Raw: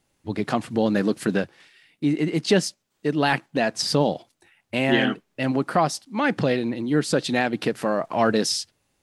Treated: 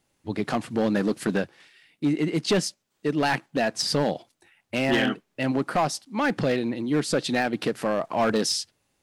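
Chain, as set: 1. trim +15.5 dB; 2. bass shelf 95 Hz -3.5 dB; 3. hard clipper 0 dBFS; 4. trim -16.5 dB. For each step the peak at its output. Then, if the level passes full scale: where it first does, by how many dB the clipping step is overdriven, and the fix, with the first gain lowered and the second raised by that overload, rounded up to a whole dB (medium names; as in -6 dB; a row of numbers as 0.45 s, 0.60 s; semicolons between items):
+8.5 dBFS, +8.5 dBFS, 0.0 dBFS, -16.5 dBFS; step 1, 8.5 dB; step 1 +6.5 dB, step 4 -7.5 dB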